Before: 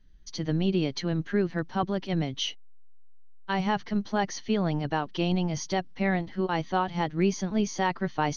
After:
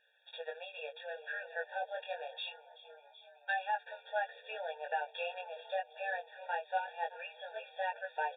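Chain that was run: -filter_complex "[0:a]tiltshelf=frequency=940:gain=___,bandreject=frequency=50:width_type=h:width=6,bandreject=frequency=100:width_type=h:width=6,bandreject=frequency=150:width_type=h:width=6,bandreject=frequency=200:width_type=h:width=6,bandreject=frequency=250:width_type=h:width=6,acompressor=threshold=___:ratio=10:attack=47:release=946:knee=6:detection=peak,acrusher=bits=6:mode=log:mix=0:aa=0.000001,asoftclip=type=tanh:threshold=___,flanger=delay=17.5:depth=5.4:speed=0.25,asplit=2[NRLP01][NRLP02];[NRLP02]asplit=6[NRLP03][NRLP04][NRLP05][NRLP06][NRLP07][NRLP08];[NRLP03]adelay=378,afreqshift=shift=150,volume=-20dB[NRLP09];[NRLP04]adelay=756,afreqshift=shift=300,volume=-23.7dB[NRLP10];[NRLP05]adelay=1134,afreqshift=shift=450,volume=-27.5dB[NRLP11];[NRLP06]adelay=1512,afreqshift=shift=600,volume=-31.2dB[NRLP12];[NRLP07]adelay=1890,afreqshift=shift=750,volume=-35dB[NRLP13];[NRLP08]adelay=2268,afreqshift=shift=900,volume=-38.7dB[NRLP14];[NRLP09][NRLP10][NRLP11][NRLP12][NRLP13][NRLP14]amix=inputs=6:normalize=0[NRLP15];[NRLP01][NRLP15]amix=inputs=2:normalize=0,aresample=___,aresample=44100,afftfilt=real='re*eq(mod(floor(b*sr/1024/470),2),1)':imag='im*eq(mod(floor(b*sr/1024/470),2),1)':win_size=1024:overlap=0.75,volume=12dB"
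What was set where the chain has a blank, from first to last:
-3.5, -39dB, -25dB, 8000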